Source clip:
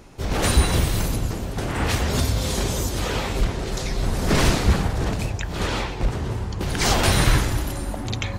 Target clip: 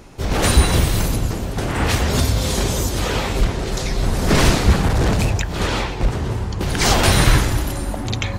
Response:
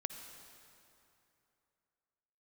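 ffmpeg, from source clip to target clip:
-filter_complex "[0:a]asplit=3[a][b][c];[a]afade=t=out:st=4.83:d=0.02[d];[b]aeval=exprs='0.282*(cos(1*acos(clip(val(0)/0.282,-1,1)))-cos(1*PI/2))+0.0501*(cos(5*acos(clip(val(0)/0.282,-1,1)))-cos(5*PI/2))':c=same,afade=t=in:st=4.83:d=0.02,afade=t=out:st=5.41:d=0.02[e];[c]afade=t=in:st=5.41:d=0.02[f];[d][e][f]amix=inputs=3:normalize=0,volume=4dB"

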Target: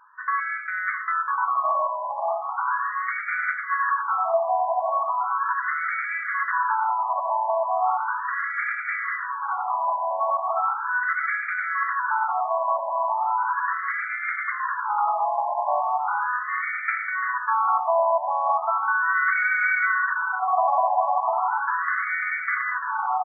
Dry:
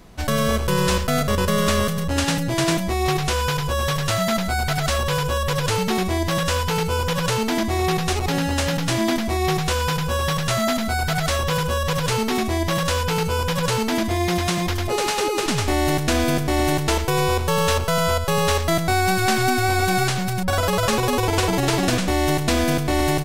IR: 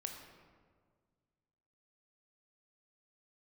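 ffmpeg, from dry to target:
-filter_complex "[0:a]aecho=1:1:1145|2290|3435|4580|5725|6870|8015:0.501|0.271|0.146|0.0789|0.0426|0.023|0.0124,asplit=2[a][b];[1:a]atrim=start_sample=2205,afade=t=out:st=0.31:d=0.01,atrim=end_sample=14112[c];[b][c]afir=irnorm=-1:irlink=0,volume=4dB[d];[a][d]amix=inputs=2:normalize=0,afftfilt=real='re*between(b*sr/1024,790*pow(1700/790,0.5+0.5*sin(2*PI*0.37*pts/sr))/1.41,790*pow(1700/790,0.5+0.5*sin(2*PI*0.37*pts/sr))*1.41)':imag='im*between(b*sr/1024,790*pow(1700/790,0.5+0.5*sin(2*PI*0.37*pts/sr))/1.41,790*pow(1700/790,0.5+0.5*sin(2*PI*0.37*pts/sr))*1.41)':win_size=1024:overlap=0.75,volume=-2dB"

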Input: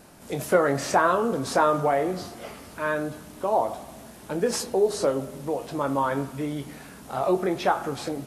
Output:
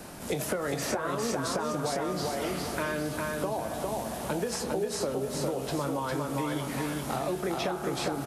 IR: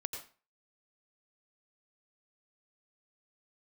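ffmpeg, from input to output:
-filter_complex "[0:a]acompressor=threshold=-31dB:ratio=4,aecho=1:1:404|808|1212|1616:0.631|0.202|0.0646|0.0207,acrossover=split=180|400|2200[a][b][c][d];[a]acompressor=threshold=-46dB:ratio=4[e];[b]acompressor=threshold=-43dB:ratio=4[f];[c]acompressor=threshold=-40dB:ratio=4[g];[d]acompressor=threshold=-42dB:ratio=4[h];[e][f][g][h]amix=inputs=4:normalize=0,volume=7dB"

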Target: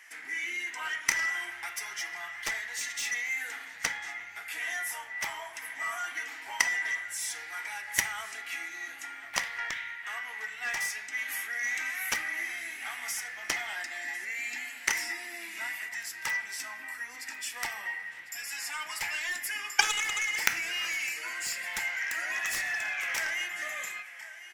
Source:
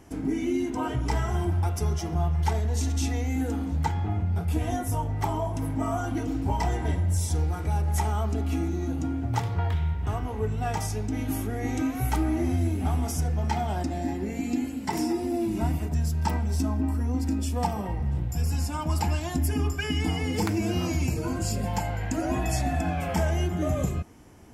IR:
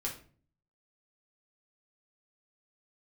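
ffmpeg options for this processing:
-filter_complex "[0:a]highpass=f=1.9k:t=q:w=6.2,aecho=1:1:1049:0.141,aeval=exprs='0.251*(cos(1*acos(clip(val(0)/0.251,-1,1)))-cos(1*PI/2))+0.1*(cos(3*acos(clip(val(0)/0.251,-1,1)))-cos(3*PI/2))':c=same,asplit=2[a][b];[1:a]atrim=start_sample=2205[c];[b][c]afir=irnorm=-1:irlink=0,volume=-9dB[d];[a][d]amix=inputs=2:normalize=0,alimiter=level_in=14.5dB:limit=-1dB:release=50:level=0:latency=1,volume=-1dB"

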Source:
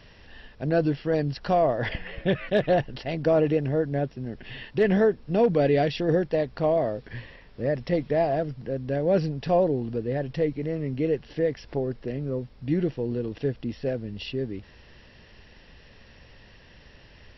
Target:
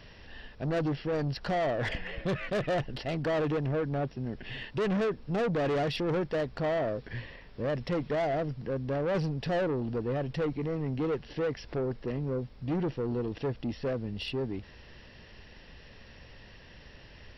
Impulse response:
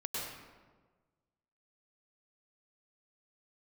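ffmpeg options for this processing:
-af "asoftclip=type=tanh:threshold=-26dB"

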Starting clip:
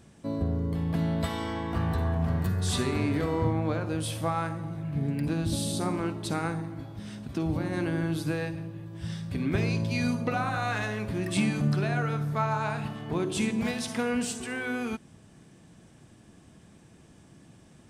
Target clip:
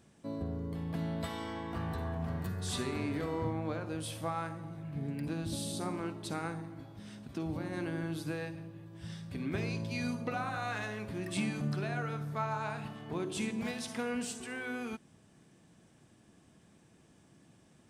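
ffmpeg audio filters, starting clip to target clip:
-af "lowshelf=f=100:g=-7.5,volume=-6.5dB"

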